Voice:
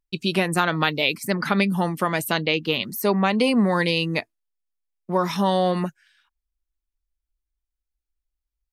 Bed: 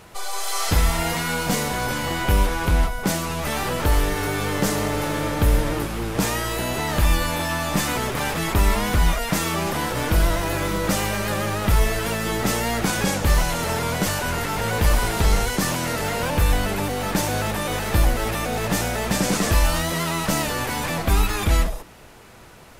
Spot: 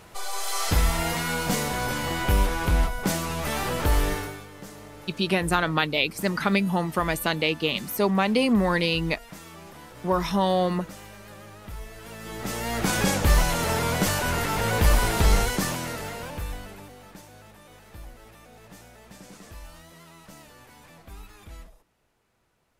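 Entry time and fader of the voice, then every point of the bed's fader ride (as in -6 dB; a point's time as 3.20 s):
4.95 s, -2.0 dB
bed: 4.13 s -3 dB
4.48 s -20.5 dB
11.89 s -20.5 dB
12.94 s -1 dB
15.40 s -1 dB
17.27 s -25 dB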